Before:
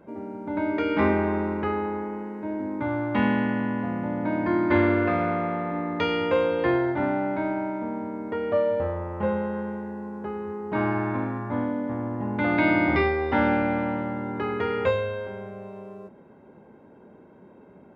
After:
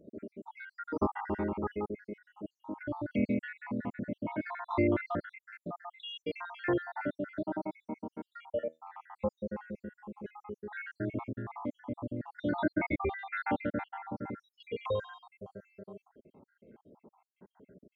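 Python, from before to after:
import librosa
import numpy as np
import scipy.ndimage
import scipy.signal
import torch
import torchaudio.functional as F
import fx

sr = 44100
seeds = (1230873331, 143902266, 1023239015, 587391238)

y = fx.spec_dropout(x, sr, seeds[0], share_pct=75)
y = fx.comb_fb(y, sr, f0_hz=80.0, decay_s=0.2, harmonics='all', damping=0.0, mix_pct=50, at=(8.52, 8.92), fade=0.02)
y = fx.steep_lowpass(y, sr, hz=4200.0, slope=96, at=(12.51, 14.1), fade=0.02)
y = F.gain(torch.from_numpy(y), -5.0).numpy()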